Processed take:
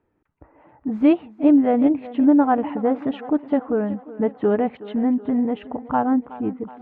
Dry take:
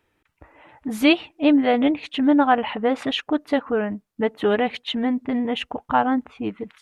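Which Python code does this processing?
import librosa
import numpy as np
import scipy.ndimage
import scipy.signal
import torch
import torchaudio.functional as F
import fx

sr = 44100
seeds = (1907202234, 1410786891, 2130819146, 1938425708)

p1 = scipy.signal.sosfilt(scipy.signal.butter(2, 1200.0, 'lowpass', fs=sr, output='sos'), x)
p2 = fx.peak_eq(p1, sr, hz=220.0, db=5.0, octaves=2.0)
p3 = p2 + fx.echo_thinned(p2, sr, ms=371, feedback_pct=59, hz=160.0, wet_db=-16.5, dry=0)
y = p3 * librosa.db_to_amplitude(-2.0)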